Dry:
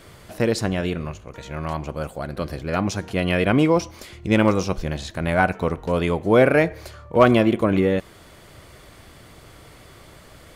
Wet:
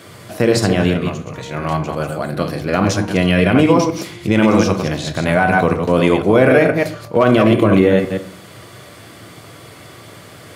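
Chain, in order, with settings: chunks repeated in reverse 122 ms, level -6 dB; high-pass 91 Hz 24 dB/octave; band-stop 900 Hz, Q 25; on a send at -8.5 dB: reverberation RT60 0.40 s, pre-delay 3 ms; on the sum: loudness maximiser +8 dB; trim -1 dB

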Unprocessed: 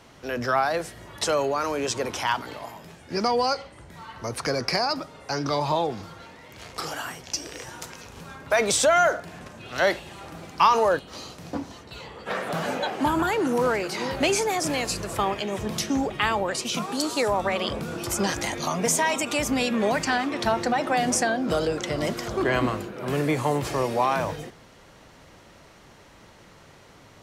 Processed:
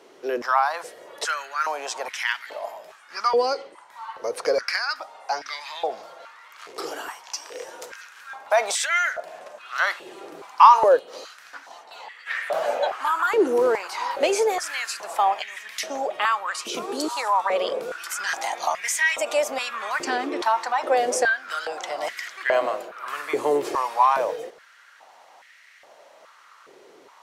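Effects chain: step-sequenced high-pass 2.4 Hz 390–1900 Hz; trim -3 dB

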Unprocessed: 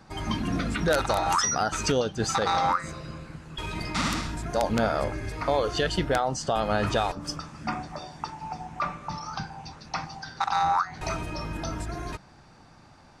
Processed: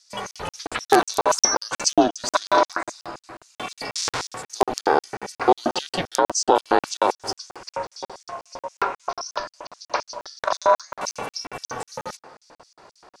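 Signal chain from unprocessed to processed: feedback echo behind a band-pass 117 ms, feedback 69%, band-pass 930 Hz, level -16 dB; LFO high-pass square 3.8 Hz 530–5600 Hz; ring modulator 190 Hz; crackling interface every 0.18 s, samples 2048, zero, from 0.31 s; trim +7.5 dB

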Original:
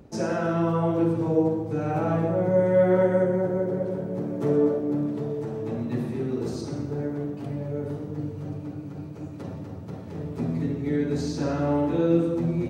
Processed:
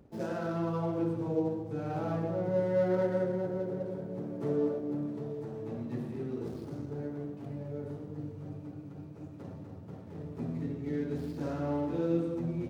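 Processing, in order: median filter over 15 samples; trim -8.5 dB

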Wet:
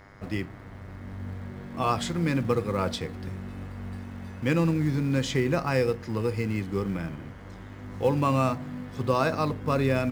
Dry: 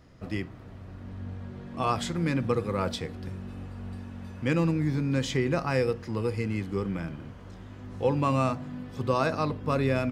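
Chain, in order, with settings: in parallel at -8 dB: short-mantissa float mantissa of 2-bit; on the sum: mains buzz 100 Hz, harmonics 22, -53 dBFS 0 dB/octave; trim -1.5 dB

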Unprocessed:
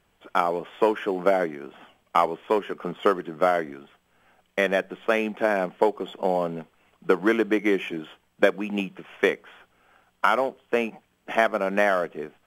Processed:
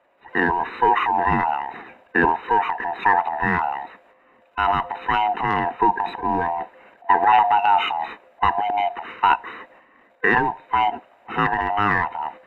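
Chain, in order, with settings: split-band scrambler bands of 500 Hz; three-band isolator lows -17 dB, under 260 Hz, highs -22 dB, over 2.4 kHz; transient shaper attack -3 dB, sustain +10 dB; trim +6 dB

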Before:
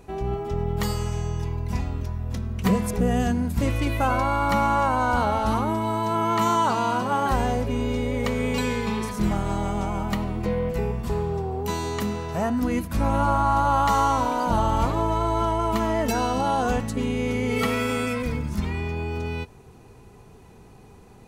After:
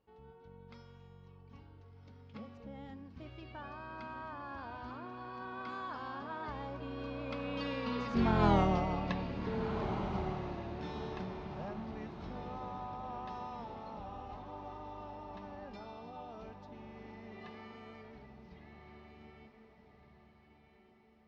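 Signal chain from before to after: Doppler pass-by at 8.51 s, 39 m/s, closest 6.1 m; steep low-pass 5 kHz 36 dB/octave; in parallel at +2 dB: compression, threshold -51 dBFS, peak gain reduction 25 dB; on the sum: bass shelf 69 Hz -9 dB; on a send: echo that smears into a reverb 1478 ms, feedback 42%, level -8.5 dB; on the sum: trim +1 dB

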